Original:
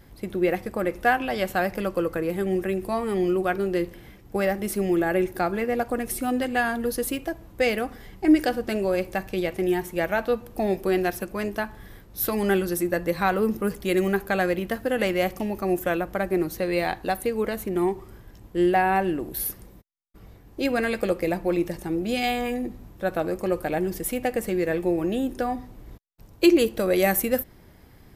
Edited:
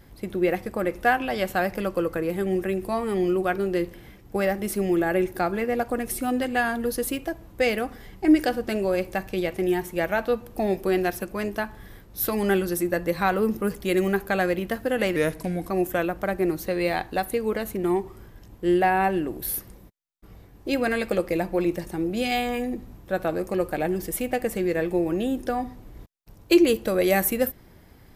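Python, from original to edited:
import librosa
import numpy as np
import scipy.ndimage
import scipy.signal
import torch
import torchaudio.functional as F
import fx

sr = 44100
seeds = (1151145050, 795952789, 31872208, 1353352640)

y = fx.edit(x, sr, fx.speed_span(start_s=15.16, length_s=0.46, speed=0.85), tone=tone)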